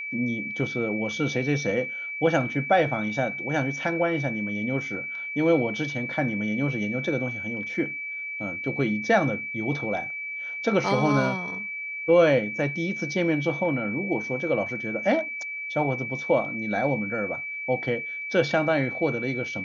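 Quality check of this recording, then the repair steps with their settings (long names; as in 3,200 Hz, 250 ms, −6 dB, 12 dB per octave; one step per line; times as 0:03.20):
whistle 2,300 Hz −31 dBFS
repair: notch filter 2,300 Hz, Q 30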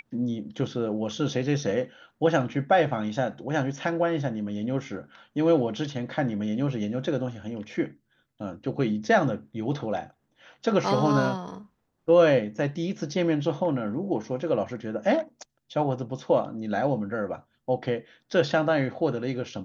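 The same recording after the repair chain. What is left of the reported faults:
none of them is left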